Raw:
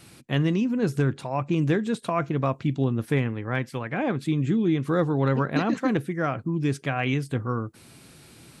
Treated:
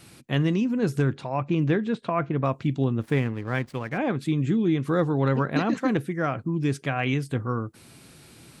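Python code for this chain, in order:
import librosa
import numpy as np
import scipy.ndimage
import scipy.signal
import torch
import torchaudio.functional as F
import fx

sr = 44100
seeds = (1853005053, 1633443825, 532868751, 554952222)

y = fx.lowpass(x, sr, hz=fx.line((1.15, 5900.0), (2.43, 2500.0)), slope=12, at=(1.15, 2.43), fade=0.02)
y = fx.backlash(y, sr, play_db=-41.5, at=(3.01, 3.98))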